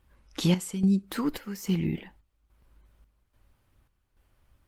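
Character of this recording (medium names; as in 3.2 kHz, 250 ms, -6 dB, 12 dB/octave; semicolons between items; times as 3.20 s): chopped level 1.2 Hz, depth 65%, duty 65%; Opus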